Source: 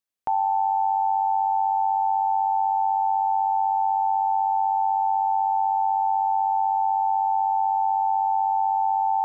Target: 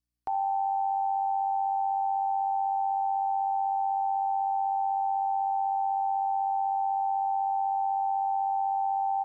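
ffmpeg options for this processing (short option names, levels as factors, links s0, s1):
-af "superequalizer=14b=1.78:16b=1.41,aeval=exprs='val(0)+0.0001*(sin(2*PI*60*n/s)+sin(2*PI*2*60*n/s)/2+sin(2*PI*3*60*n/s)/3+sin(2*PI*4*60*n/s)/4+sin(2*PI*5*60*n/s)/5)':c=same,aecho=1:1:2.7:0.44,aecho=1:1:56|78:0.141|0.15,volume=0.422"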